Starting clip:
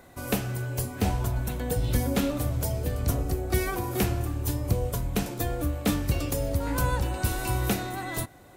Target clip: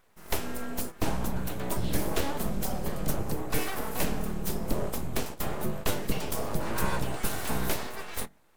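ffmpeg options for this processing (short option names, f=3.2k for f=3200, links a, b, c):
-af "bandreject=f=45.37:t=h:w=4,bandreject=f=90.74:t=h:w=4,bandreject=f=136.11:t=h:w=4,bandreject=f=181.48:t=h:w=4,bandreject=f=226.85:t=h:w=4,bandreject=f=272.22:t=h:w=4,bandreject=f=317.59:t=h:w=4,bandreject=f=362.96:t=h:w=4,agate=range=-11dB:threshold=-33dB:ratio=16:detection=peak,aeval=exprs='abs(val(0))':c=same"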